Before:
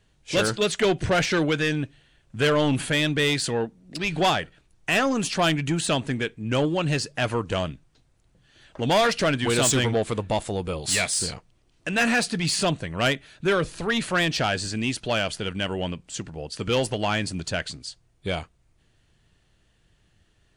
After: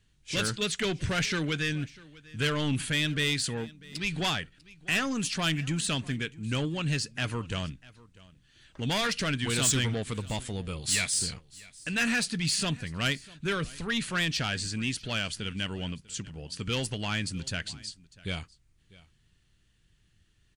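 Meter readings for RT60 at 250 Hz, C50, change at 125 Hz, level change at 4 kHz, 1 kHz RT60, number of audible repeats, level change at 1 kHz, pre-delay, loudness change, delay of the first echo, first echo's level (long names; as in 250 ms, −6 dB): no reverb audible, no reverb audible, −3.5 dB, −3.0 dB, no reverb audible, 1, −10.0 dB, no reverb audible, −5.5 dB, 646 ms, −22.0 dB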